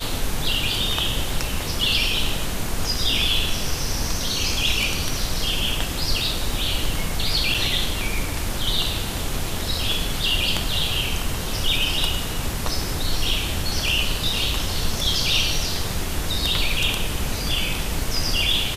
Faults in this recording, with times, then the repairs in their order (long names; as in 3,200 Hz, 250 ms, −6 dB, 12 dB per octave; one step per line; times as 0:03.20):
0:07.54: drop-out 4.4 ms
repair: repair the gap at 0:07.54, 4.4 ms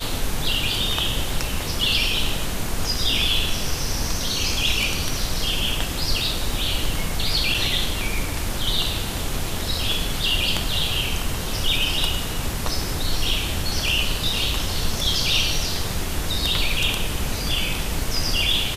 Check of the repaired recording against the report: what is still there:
none of them is left